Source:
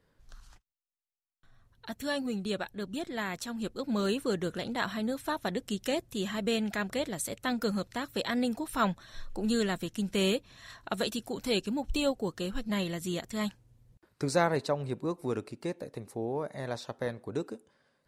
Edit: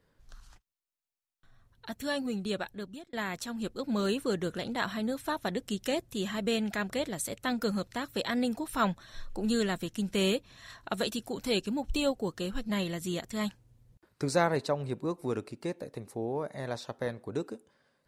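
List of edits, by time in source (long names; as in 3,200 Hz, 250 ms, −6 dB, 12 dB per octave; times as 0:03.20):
0:02.70–0:03.13: fade out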